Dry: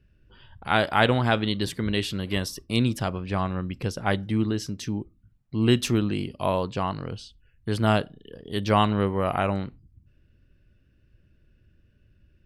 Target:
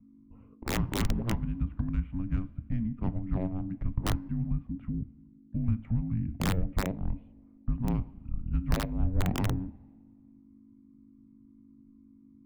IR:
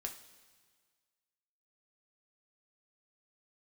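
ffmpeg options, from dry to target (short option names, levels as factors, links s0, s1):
-filter_complex "[0:a]aeval=exprs='val(0)+0.00447*(sin(2*PI*50*n/s)+sin(2*PI*2*50*n/s)/2+sin(2*PI*3*50*n/s)/3+sin(2*PI*4*50*n/s)/4+sin(2*PI*5*50*n/s)/5)':c=same,acompressor=threshold=0.0316:ratio=6,highpass=f=240:t=q:w=0.5412,highpass=f=240:t=q:w=1.307,lowpass=f=3200:t=q:w=0.5176,lowpass=f=3200:t=q:w=0.7071,lowpass=f=3200:t=q:w=1.932,afreqshift=-150,adynamicsmooth=sensitivity=1:basefreq=640,equalizer=f=450:w=3.5:g=3,asplit=2[s0][s1];[1:a]atrim=start_sample=2205,lowpass=5300[s2];[s1][s2]afir=irnorm=-1:irlink=0,volume=0.708[s3];[s0][s3]amix=inputs=2:normalize=0,aeval=exprs='(mod(12.6*val(0)+1,2)-1)/12.6':c=same,afreqshift=-320,lowshelf=f=130:g=10"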